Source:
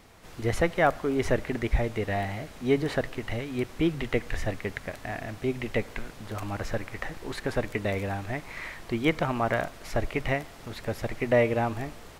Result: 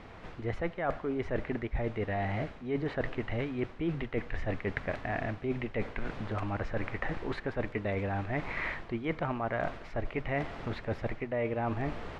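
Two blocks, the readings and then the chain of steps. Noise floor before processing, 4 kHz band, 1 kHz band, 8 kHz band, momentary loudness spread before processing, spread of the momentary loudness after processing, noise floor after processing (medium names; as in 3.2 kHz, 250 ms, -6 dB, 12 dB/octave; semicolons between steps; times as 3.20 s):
-47 dBFS, -9.0 dB, -5.0 dB, under -15 dB, 12 LU, 4 LU, -48 dBFS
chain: low-pass 2.6 kHz 12 dB/octave; reverse; compression 12:1, threshold -35 dBFS, peak gain reduction 18 dB; reverse; trim +6 dB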